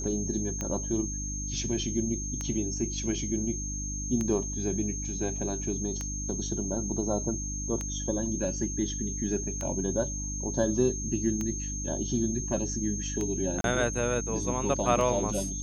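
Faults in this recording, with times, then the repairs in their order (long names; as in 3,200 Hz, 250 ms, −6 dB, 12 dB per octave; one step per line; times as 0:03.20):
mains hum 50 Hz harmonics 6 −36 dBFS
scratch tick 33 1/3 rpm −19 dBFS
whistle 6,400 Hz −35 dBFS
0:13.61–0:13.64: drop-out 32 ms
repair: click removal
hum removal 50 Hz, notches 6
notch filter 6,400 Hz, Q 30
repair the gap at 0:13.61, 32 ms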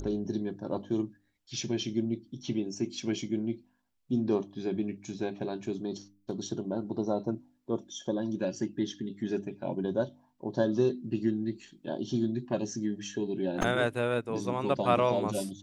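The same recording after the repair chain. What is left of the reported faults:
none of them is left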